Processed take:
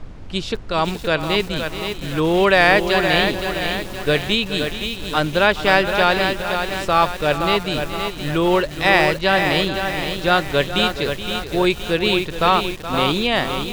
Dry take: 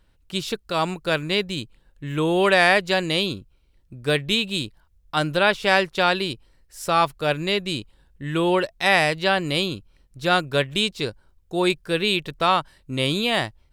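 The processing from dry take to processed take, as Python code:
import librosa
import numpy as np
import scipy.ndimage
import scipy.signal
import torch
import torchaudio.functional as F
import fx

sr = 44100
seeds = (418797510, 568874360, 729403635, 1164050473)

p1 = fx.peak_eq(x, sr, hz=120.0, db=-9.5, octaves=0.28)
p2 = fx.dmg_noise_colour(p1, sr, seeds[0], colour='brown', level_db=-37.0)
p3 = fx.air_absorb(p2, sr, metres=74.0)
p4 = p3 + fx.echo_single(p3, sr, ms=422, db=-12.5, dry=0)
p5 = fx.echo_crushed(p4, sr, ms=518, feedback_pct=55, bits=6, wet_db=-6)
y = F.gain(torch.from_numpy(p5), 3.5).numpy()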